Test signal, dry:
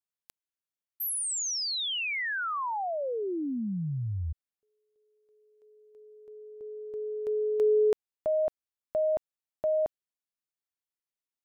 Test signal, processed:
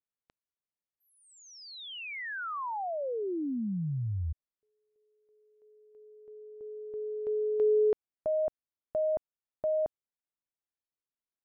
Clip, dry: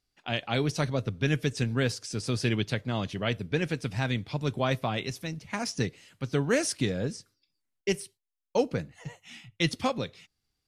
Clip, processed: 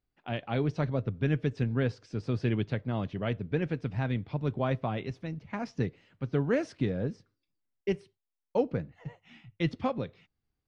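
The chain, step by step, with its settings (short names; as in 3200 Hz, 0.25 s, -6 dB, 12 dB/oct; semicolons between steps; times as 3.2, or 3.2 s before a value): tape spacing loss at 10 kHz 35 dB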